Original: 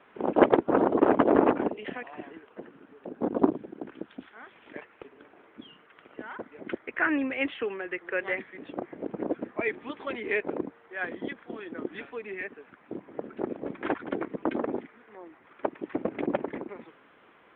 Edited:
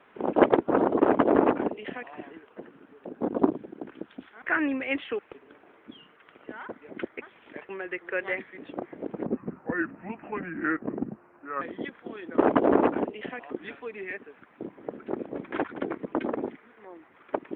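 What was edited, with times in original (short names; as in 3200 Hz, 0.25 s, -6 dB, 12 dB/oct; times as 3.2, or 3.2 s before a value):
1.01–2.14 copy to 11.81
4.42–4.89 swap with 6.92–7.69
9.26–11.05 speed 76%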